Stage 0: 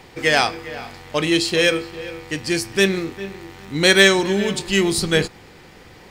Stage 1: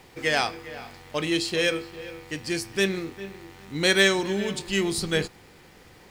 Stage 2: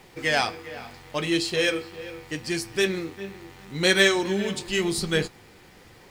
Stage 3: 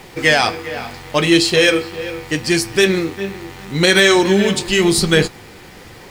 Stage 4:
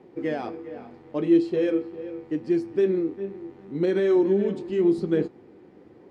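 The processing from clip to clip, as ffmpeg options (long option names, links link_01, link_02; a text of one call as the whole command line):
ffmpeg -i in.wav -af "acrusher=bits=7:mix=0:aa=0.5,volume=-7dB" out.wav
ffmpeg -i in.wav -af "flanger=delay=4.6:depth=6.5:regen=-50:speed=0.79:shape=triangular,volume=4.5dB" out.wav
ffmpeg -i in.wav -af "alimiter=level_in=13dB:limit=-1dB:release=50:level=0:latency=1,volume=-1dB" out.wav
ffmpeg -i in.wav -af "bandpass=frequency=320:width_type=q:width=2:csg=0,volume=-4dB" out.wav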